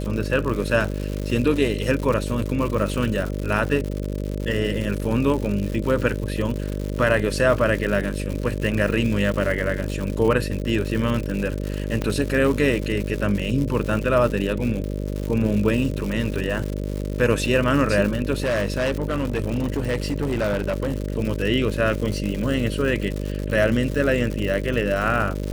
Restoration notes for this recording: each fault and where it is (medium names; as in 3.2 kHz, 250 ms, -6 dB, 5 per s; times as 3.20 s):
buzz 50 Hz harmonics 12 -27 dBFS
crackle 160 per s -26 dBFS
12.02 s: pop -12 dBFS
18.38–21.18 s: clipped -18.5 dBFS